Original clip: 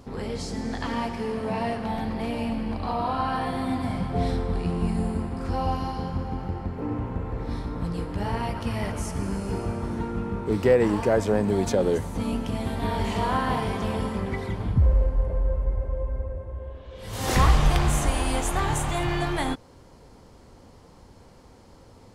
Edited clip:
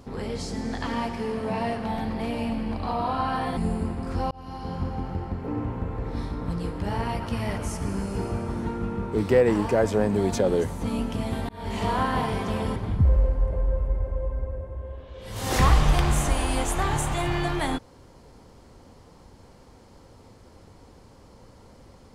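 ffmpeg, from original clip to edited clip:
ffmpeg -i in.wav -filter_complex "[0:a]asplit=5[link_01][link_02][link_03][link_04][link_05];[link_01]atrim=end=3.572[link_06];[link_02]atrim=start=4.908:end=5.65,asetpts=PTS-STARTPTS,afade=type=out:start_time=0.738:duration=0.004:curve=hsin[link_07];[link_03]atrim=start=5.65:end=12.83,asetpts=PTS-STARTPTS,afade=type=in:duration=0.49,afade=type=out:start_time=7.176:duration=0.004:curve=hsin[link_08];[link_04]atrim=start=12.83:end=14.102,asetpts=PTS-STARTPTS,afade=type=in:duration=0.34[link_09];[link_05]atrim=start=14.528[link_10];[link_07][link_08][link_09]concat=n=3:v=0:a=1[link_11];[link_06][link_11]acrossfade=duration=0.004:curve1=hsin:curve2=hsin[link_12];[link_12][link_10]acrossfade=duration=0.004:curve1=hsin:curve2=hsin" out.wav

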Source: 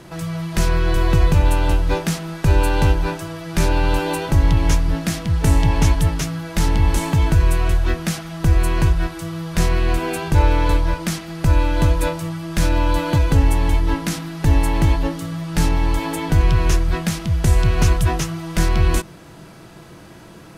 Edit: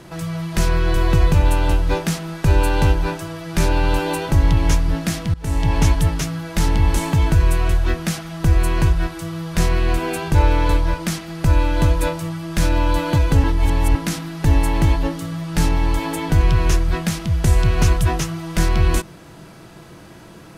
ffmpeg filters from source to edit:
ffmpeg -i in.wav -filter_complex "[0:a]asplit=4[link_01][link_02][link_03][link_04];[link_01]atrim=end=5.34,asetpts=PTS-STARTPTS,afade=type=out:start_time=5.336:duration=0.004:curve=hsin:silence=0.0794328[link_05];[link_02]atrim=start=5.34:end=13.442,asetpts=PTS-STARTPTS,afade=type=in:duration=0.41:silence=0.0794328[link_06];[link_03]atrim=start=13.438:end=13.952,asetpts=PTS-STARTPTS,areverse[link_07];[link_04]atrim=start=13.948[link_08];[link_05][link_06]concat=n=2:v=0:a=1[link_09];[link_09][link_07]acrossfade=duration=0.004:curve1=hsin:curve2=hsin[link_10];[link_10][link_08]acrossfade=duration=0.004:curve1=hsin:curve2=hsin" out.wav

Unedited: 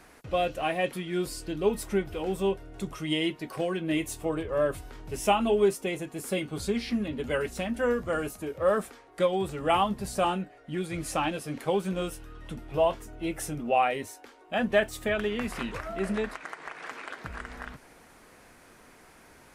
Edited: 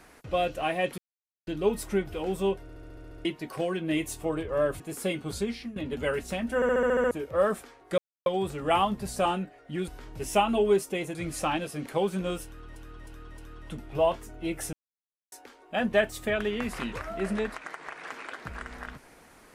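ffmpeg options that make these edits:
ffmpeg -i in.wav -filter_complex "[0:a]asplit=30[link_01][link_02][link_03][link_04][link_05][link_06][link_07][link_08][link_09][link_10][link_11][link_12][link_13][link_14][link_15][link_16][link_17][link_18][link_19][link_20][link_21][link_22][link_23][link_24][link_25][link_26][link_27][link_28][link_29][link_30];[link_01]atrim=end=0.98,asetpts=PTS-STARTPTS,afade=type=out:start_time=0.976:duration=0.004:curve=hsin[link_31];[link_02]atrim=start=0.98:end=1.47,asetpts=PTS-STARTPTS,volume=0[link_32];[link_03]atrim=start=1.47:end=2.692,asetpts=PTS-STARTPTS,afade=type=in:duration=0.004:curve=hsin[link_33];[link_04]atrim=start=2.618:end=2.692[link_34];[link_05]atrim=start=2.618:end=2.692[link_35];[link_06]atrim=start=2.618:end=2.692[link_36];[link_07]atrim=start=2.618:end=2.692[link_37];[link_08]atrim=start=2.618:end=2.692[link_38];[link_09]atrim=start=2.618:end=2.692[link_39];[link_10]atrim=start=2.618:end=2.692[link_40];[link_11]atrim=start=2.618:end=2.692[link_41];[link_12]atrim=start=3.248:end=4.802[link_42];[link_13]atrim=start=6.068:end=7.03,asetpts=PTS-STARTPTS,afade=type=out:start_time=0.562:duration=0.4:silence=0.158489[link_43];[link_14]atrim=start=7.03:end=7.892,asetpts=PTS-STARTPTS,afade=type=in:duration=0.004:curve=hsin:silence=0.158489[link_44];[link_15]atrim=start=7.818:end=7.892[link_45];[link_16]atrim=start=7.818:end=7.892[link_46];[link_17]atrim=start=7.818:end=7.892[link_47];[link_18]atrim=start=7.818:end=7.892[link_48];[link_19]atrim=start=7.818:end=7.892[link_49];[link_20]atrim=start=7.818:end=7.892[link_50];[link_21]atrim=start=7.818:end=7.892[link_51];[link_22]atrim=start=8.378:end=9.25,asetpts=PTS-STARTPTS,afade=type=out:start_time=0.868:duration=0.004:curve=hsin,apad=pad_dur=0.28[link_52];[link_23]atrim=start=9.25:end=10.872,asetpts=PTS-STARTPTS,afade=type=in:duration=0.004:curve=hsin[link_53];[link_24]atrim=start=4.798:end=6.072[link_54];[link_25]atrim=start=10.868:end=12.482[link_55];[link_26]atrim=start=12.168:end=12.482[link_56];[link_27]atrim=start=12.168:end=12.482[link_57];[link_28]atrim=start=12.168:end=13.52,asetpts=PTS-STARTPTS,afade=type=out:start_time=1.348:duration=0.004:curve=hsin[link_58];[link_29]atrim=start=13.52:end=14.11,asetpts=PTS-STARTPTS,volume=0[link_59];[link_30]atrim=start=14.11,asetpts=PTS-STARTPTS,afade=type=in:duration=0.004:curve=hsin[link_60];[link_31][link_32][link_33]concat=n=3:v=0:a=1[link_61];[link_61][link_34]acrossfade=duration=0.004:curve1=hsin:curve2=hsin[link_62];[link_62][link_35]acrossfade=duration=0.004:curve1=hsin:curve2=hsin[link_63];[link_63][link_36]acrossfade=duration=0.004:curve1=hsin:curve2=hsin[link_64];[link_64][link_37]acrossfade=duration=0.004:curve1=hsin:curve2=hsin[link_65];[link_65][link_38]acrossfade=duration=0.004:curve1=hsin:curve2=hsin[link_66];[link_66][link_39]acrossfade=duration=0.004:curve1=hsin:curve2=hsin[link_67];[link_67][link_40]acrossfade=duration=0.004:curve1=hsin:curve2=hsin[link_68];[link_68][link_41]acrossfade=duration=0.004:curve1=hsin:curve2=hsin[link_69];[link_69][link_42]acrossfade=duration=0.004:curve1=hsin:curve2=hsin[link_70];[link_43][link_44]concat=n=2:v=0:a=1[link_71];[link_70][link_71]acrossfade=duration=0.004:curve1=hsin:curve2=hsin[link_72];[link_72][link_45]acrossfade=duration=0.004:curve1=hsin:curve2=hsin[link_73];[link_73][link_46]acrossfade=duration=0.004:curve1=hsin:curve2=hsin[link_74];[link_74][link_47]acrossfade=duration=0.004:curve1=hsin:curve2=hsin[link_75];[link_75][link_48]acrossfade=duration=0.004:curve1=hsin:curve2=hsin[link_76];[link_76][link_49]acrossfade=duration=0.004:curve1=hsin:curve2=hsin[link_77];[link_77][link_50]acrossfade=duration=0.004:curve1=hsin:curve2=hsin[link_78];[link_78][link_51]acrossfade=duration=0.004:curve1=hsin:curve2=hsin[link_79];[link_52][link_53]concat=n=2:v=0:a=1[link_80];[link_79][link_80]acrossfade=duration=0.004:curve1=hsin:curve2=hsin[link_81];[link_81][link_54]acrossfade=duration=0.004:curve1=hsin:curve2=hsin[link_82];[link_82][link_55]acrossfade=duration=0.004:curve1=hsin:curve2=hsin[link_83];[link_83][link_56]acrossfade=duration=0.004:curve1=hsin:curve2=hsin[link_84];[link_84][link_57]acrossfade=duration=0.004:curve1=hsin:curve2=hsin[link_85];[link_58][link_59][link_60]concat=n=3:v=0:a=1[link_86];[link_85][link_86]acrossfade=duration=0.004:curve1=hsin:curve2=hsin" out.wav

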